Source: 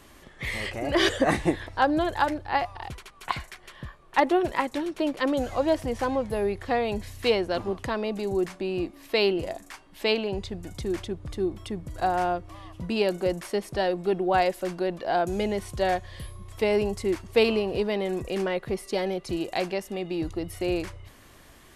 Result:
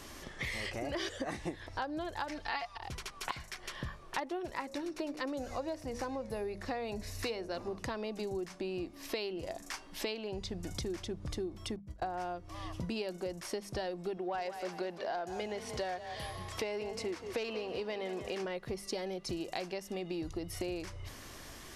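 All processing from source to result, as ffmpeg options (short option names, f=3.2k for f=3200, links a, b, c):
-filter_complex "[0:a]asettb=1/sr,asplit=3[a][b][c];[a]atrim=end=2.294[d];[b]atrim=start=2.29:end=2.78,asetpts=PTS-STARTPTS,afade=t=in:d=0.004:c=qsin,afade=t=out:st=0.486:d=0.004:c=qsin,equalizer=f=3.3k:w=0.31:g=11,aecho=1:1:4.4:0.69,atrim=end_sample=21609[e];[c]atrim=start=2.776[f];[d][e]acrossfade=d=0.004:c1=hsin:c2=qsin[g];[g][f]acrossfade=d=0.004:c1=qsin:c2=hsin,asettb=1/sr,asplit=3[h][i][j];[h]atrim=end=4.534[k];[i]atrim=start=4.53:end=7.86,asetpts=PTS-STARTPTS,afade=t=in:d=0.004:c=qsin,afade=t=out:st=3.326:d=0.004:c=qsin,bandreject=f=3.2k:w=7.9,bandreject=f=60.52:t=h:w=4,bandreject=f=121.04:t=h:w=4,bandreject=f=181.56:t=h:w=4,bandreject=f=242.08:t=h:w=4,bandreject=f=302.6:t=h:w=4,bandreject=f=363.12:t=h:w=4,bandreject=f=423.64:t=h:w=4,bandreject=f=484.16:t=h:w=4,bandreject=f=544.68:t=h:w=4,bandreject=f=605.2:t=h:w=4,bandreject=f=665.72:t=h:w=4[l];[j]atrim=start=7.856[m];[k][l]acrossfade=d=0.004:c1=hsin:c2=qsin[n];[n][m]acrossfade=d=0.004:c1=qsin:c2=hsin,asettb=1/sr,asplit=3[o][p][q];[o]atrim=end=11.764[r];[p]atrim=start=11.76:end=12.2,asetpts=PTS-STARTPTS,afade=t=in:d=0.004:c=qsin,afade=t=out:st=0.436:d=0.004:c=qsin,agate=range=-26dB:threshold=-35dB:ratio=16:release=100:detection=peak,highshelf=f=3.7k:g=-10.5[s];[q]atrim=start=12.196[t];[r][s]acrossfade=d=0.004:c1=hsin:c2=qsin[u];[u][t]acrossfade=d=0.004:c1=qsin:c2=hsin,asettb=1/sr,asplit=3[v][w][x];[v]atrim=end=14.174[y];[w]atrim=start=14.17:end=18.45,asetpts=PTS-STARTPTS,afade=t=in:d=0.004:c=qsin,afade=t=out:st=4.276:d=0.004:c=qsin,highpass=44,asplit=2[z][aa];[aa]highpass=f=720:p=1,volume=10dB,asoftclip=type=tanh:threshold=-9.5dB[ab];[z][ab]amix=inputs=2:normalize=0,lowpass=f=3.4k:p=1,volume=-6dB,asplit=4[ac][ad][ae][af];[ad]adelay=178,afreqshift=32,volume=-13.5dB[ag];[ae]adelay=356,afreqshift=64,volume=-23.1dB[ah];[af]adelay=534,afreqshift=96,volume=-32.8dB[ai];[ac][ag][ah][ai]amix=inputs=4:normalize=0,atrim=end_sample=188748[aj];[x]atrim=start=18.446[ak];[y][aj]acrossfade=d=0.004:c1=hsin:c2=qsin[al];[al][ak]acrossfade=d=0.004:c1=qsin:c2=hsin,equalizer=f=5.5k:w=2.2:g=7.5,bandreject=f=50:t=h:w=6,bandreject=f=100:t=h:w=6,bandreject=f=150:t=h:w=6,bandreject=f=200:t=h:w=6,acompressor=threshold=-38dB:ratio=8,volume=2.5dB"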